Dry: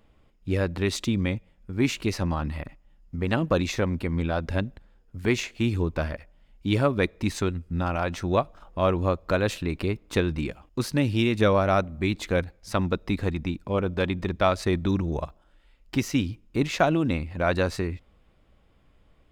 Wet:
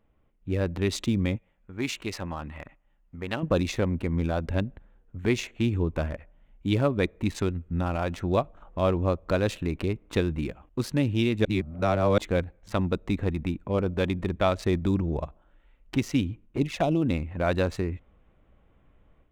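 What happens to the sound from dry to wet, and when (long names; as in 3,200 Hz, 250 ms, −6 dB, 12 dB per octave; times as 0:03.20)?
0:01.36–0:03.43: low-shelf EQ 470 Hz −10.5 dB
0:11.45–0:12.18: reverse
0:16.46–0:17.02: flanger swept by the level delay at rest 9.2 ms, full sweep at −19 dBFS
whole clip: adaptive Wiener filter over 9 samples; dynamic equaliser 1,400 Hz, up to −4 dB, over −39 dBFS, Q 0.8; automatic gain control gain up to 8 dB; level −7.5 dB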